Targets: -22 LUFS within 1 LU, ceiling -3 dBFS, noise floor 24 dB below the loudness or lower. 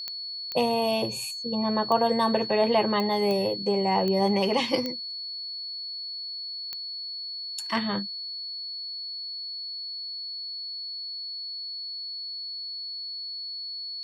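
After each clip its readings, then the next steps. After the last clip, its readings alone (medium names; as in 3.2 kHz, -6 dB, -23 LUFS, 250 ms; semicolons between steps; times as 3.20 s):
clicks found 8; steady tone 4.4 kHz; tone level -33 dBFS; loudness -28.5 LUFS; peak level -10.0 dBFS; loudness target -22.0 LUFS
-> de-click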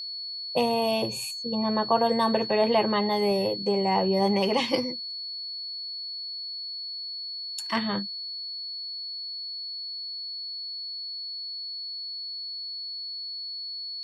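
clicks found 0; steady tone 4.4 kHz; tone level -33 dBFS
-> band-stop 4.4 kHz, Q 30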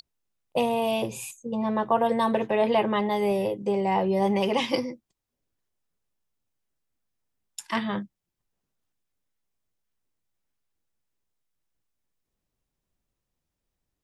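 steady tone not found; loudness -26.0 LUFS; peak level -10.0 dBFS; loudness target -22.0 LUFS
-> trim +4 dB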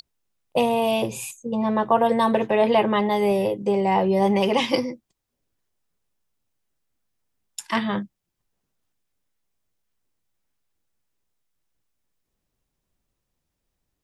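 loudness -22.0 LUFS; peak level -6.0 dBFS; noise floor -80 dBFS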